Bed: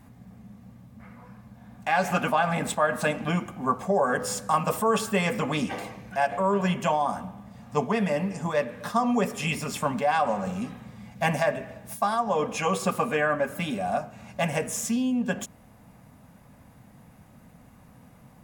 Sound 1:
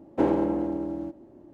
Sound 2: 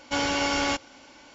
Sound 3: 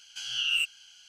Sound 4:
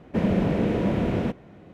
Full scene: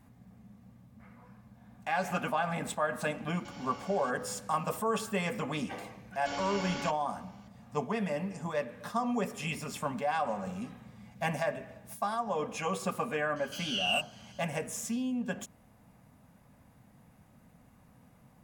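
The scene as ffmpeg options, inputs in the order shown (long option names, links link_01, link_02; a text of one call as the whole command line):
ffmpeg -i bed.wav -i cue0.wav -i cue1.wav -i cue2.wav -filter_complex "[2:a]asplit=2[link_01][link_02];[0:a]volume=-7.5dB[link_03];[link_01]acompressor=threshold=-34dB:ratio=6:attack=3.2:release=140:knee=1:detection=peak,atrim=end=1.34,asetpts=PTS-STARTPTS,volume=-12.5dB,afade=type=in:duration=0.004:curve=hsin,afade=type=out:start_time=1.336:duration=0.004:curve=hsin,adelay=3340[link_04];[link_02]atrim=end=1.34,asetpts=PTS-STARTPTS,volume=-13dB,afade=type=in:duration=0.004:curve=hsin,afade=type=out:start_time=1.336:duration=0.004:curve=hsin,adelay=6140[link_05];[3:a]atrim=end=1.08,asetpts=PTS-STARTPTS,volume=-4dB,afade=type=in:duration=0.004:curve=hsin,afade=type=out:start_time=1.076:duration=0.004:curve=hsin,adelay=13360[link_06];[link_03][link_04][link_05][link_06]amix=inputs=4:normalize=0" out.wav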